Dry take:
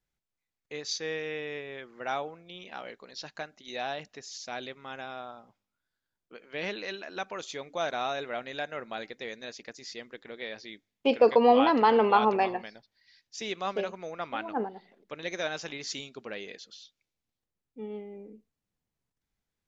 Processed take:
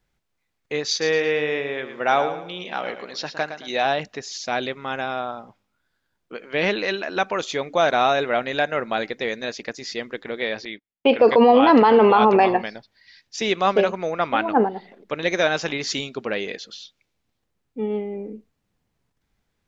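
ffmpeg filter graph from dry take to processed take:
-filter_complex "[0:a]asettb=1/sr,asplit=3[s0][s1][s2];[s0]atrim=end=0.904[s3];[s1]atrim=start=0.9:end=3.85,asetpts=PTS-STARTPTS,afade=t=in:d=0.004:c=qsin,afade=t=out:st=2.946:d=0.004:c=qsin,lowshelf=f=92:g=-10.5,aecho=1:1:112|224|336|448:0.316|0.104|0.0344|0.0114,atrim=end_sample=130095[s4];[s2]atrim=start=3.846[s5];[s3][s4]acrossfade=d=0.004:c1=hsin:c2=qsin[s6];[s6][s5]acrossfade=d=0.004:c1=qsin:c2=hsin,asettb=1/sr,asplit=3[s7][s8][s9];[s7]atrim=end=10.654[s10];[s8]atrim=start=10.65:end=11.19,asetpts=PTS-STARTPTS,afade=t=in:d=0.004:c=qsin,afade=t=out:st=0.536:d=0.004:c=qsin,lowpass=f=3800:w=0.5412,lowpass=f=3800:w=1.3066,lowshelf=f=430:g=-5.5,agate=range=0.0562:threshold=0.00141:ratio=16:release=100:detection=peak[s11];[s9]atrim=start=11.186[s12];[s10][s11]acrossfade=d=0.004:c1=hsin:c2=qsin[s13];[s13][s12]acrossfade=d=0.004:c1=qsin:c2=hsin,highshelf=f=5200:g=-9,alimiter=level_in=8.41:limit=0.891:release=50:level=0:latency=1,volume=0.562"

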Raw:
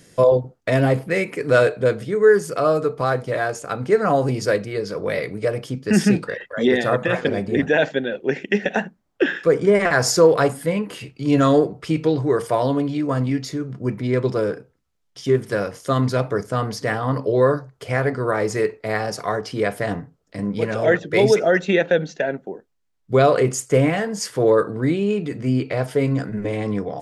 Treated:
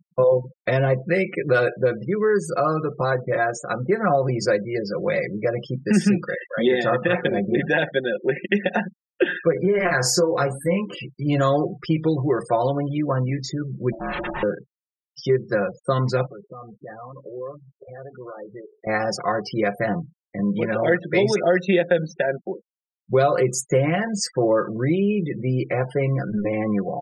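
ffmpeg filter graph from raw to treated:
-filter_complex "[0:a]asettb=1/sr,asplit=3[s0][s1][s2];[s0]atrim=end=9.524[s3];[s1]atrim=start=9.52:end=11.01,asetpts=PTS-STARTPTS,afade=t=in:d=0.004:c=qsin,afade=t=out:st=1.486:d=0.004:c=qsin,acompressor=threshold=0.112:ratio=2:attack=3.2:release=140:knee=1:detection=peak,asplit=2[s4][s5];[s5]adelay=22,volume=0.562[s6];[s4][s6]amix=inputs=2:normalize=0,atrim=end_sample=65709[s7];[s2]atrim=start=11.006[s8];[s3][s7]acrossfade=d=0.004:c1=hsin:c2=qsin[s9];[s9][s8]acrossfade=d=0.004:c1=qsin:c2=hsin,asettb=1/sr,asplit=3[s10][s11][s12];[s10]atrim=end=13.924[s13];[s11]atrim=start=13.92:end=14.43,asetpts=PTS-STARTPTS,afade=t=in:d=0.004:c=qsin,afade=t=out:st=0.506:d=0.004:c=qsin,lowpass=6500,aeval=exprs='val(0)*sin(2*PI*460*n/s)':c=same,aeval=exprs='0.0631*(abs(mod(val(0)/0.0631+3,4)-2)-1)':c=same[s14];[s12]atrim=start=14.426[s15];[s13][s14]acrossfade=d=0.004:c1=hsin:c2=qsin[s16];[s16][s15]acrossfade=d=0.004:c1=qsin:c2=hsin,asettb=1/sr,asplit=3[s17][s18][s19];[s17]atrim=end=16.264[s20];[s18]atrim=start=16.26:end=18.87,asetpts=PTS-STARTPTS,afade=t=in:d=0.004:c=qsin,afade=t=out:st=2.606:d=0.004:c=qsin,lowpass=1500,acompressor=threshold=0.0141:ratio=3:attack=3.2:release=140:knee=1:detection=peak,lowshelf=f=280:g=-7[s21];[s19]atrim=start=18.866[s22];[s20][s21]acrossfade=d=0.004:c1=hsin:c2=qsin[s23];[s23][s22]acrossfade=d=0.004:c1=qsin:c2=hsin,afftfilt=real='re*gte(hypot(re,im),0.0251)':imag='im*gte(hypot(re,im),0.0251)':win_size=1024:overlap=0.75,aecho=1:1:5.6:0.69,acompressor=threshold=0.126:ratio=2"

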